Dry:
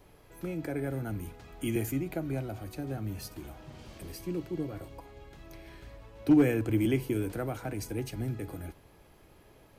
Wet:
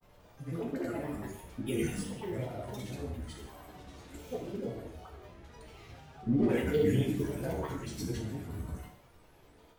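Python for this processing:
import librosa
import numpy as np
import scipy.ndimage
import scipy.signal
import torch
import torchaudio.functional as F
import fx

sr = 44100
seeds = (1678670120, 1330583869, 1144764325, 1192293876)

y = fx.dispersion(x, sr, late='highs', ms=99.0, hz=630.0)
y = fx.chorus_voices(y, sr, voices=2, hz=0.34, base_ms=14, depth_ms=3.4, mix_pct=45)
y = fx.granulator(y, sr, seeds[0], grain_ms=100.0, per_s=20.0, spray_ms=100.0, spread_st=7)
y = fx.rev_gated(y, sr, seeds[1], gate_ms=230, shape='falling', drr_db=0.0)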